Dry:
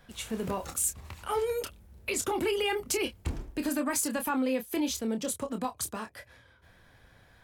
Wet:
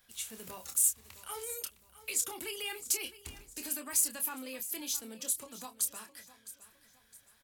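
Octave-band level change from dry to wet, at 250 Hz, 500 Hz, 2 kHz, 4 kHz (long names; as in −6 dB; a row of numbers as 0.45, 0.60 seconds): −16.5, −16.0, −7.5, −3.5 decibels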